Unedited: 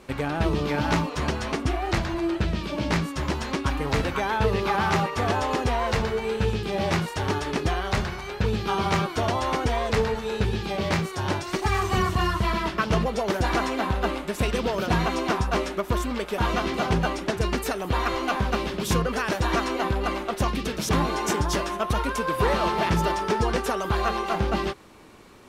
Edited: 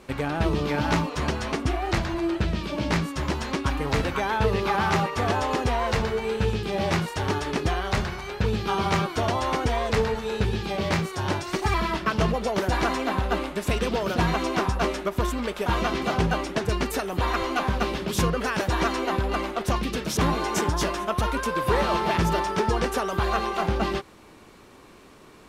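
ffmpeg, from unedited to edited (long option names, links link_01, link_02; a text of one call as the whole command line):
ffmpeg -i in.wav -filter_complex "[0:a]asplit=2[link_01][link_02];[link_01]atrim=end=11.742[link_03];[link_02]atrim=start=12.458[link_04];[link_03][link_04]acrossfade=duration=0.004:curve1=hsin:curve2=hsin" out.wav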